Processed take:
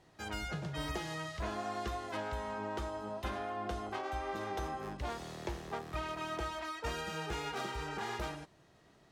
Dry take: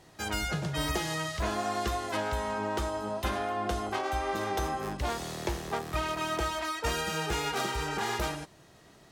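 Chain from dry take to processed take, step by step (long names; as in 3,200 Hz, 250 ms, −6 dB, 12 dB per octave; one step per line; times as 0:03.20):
high-shelf EQ 6,400 Hz −9.5 dB
level −7 dB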